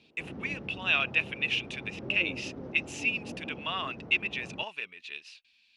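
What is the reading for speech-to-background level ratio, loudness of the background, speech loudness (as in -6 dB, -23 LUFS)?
13.0 dB, -43.5 LUFS, -30.5 LUFS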